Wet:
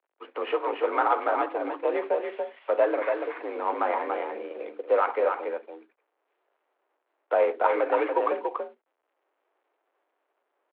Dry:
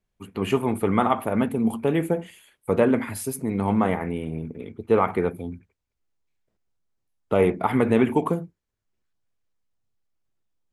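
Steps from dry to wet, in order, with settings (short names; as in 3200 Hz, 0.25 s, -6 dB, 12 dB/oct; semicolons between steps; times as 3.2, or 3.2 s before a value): CVSD 32 kbps; high shelf 2100 Hz -7.5 dB; in parallel at +2.5 dB: compressor, threshold -30 dBFS, peak gain reduction 14.5 dB; on the sum: mistuned SSB +59 Hz 260–3600 Hz; three-band isolator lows -21 dB, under 470 Hz, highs -15 dB, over 2900 Hz; on a send: echo 0.285 s -5 dB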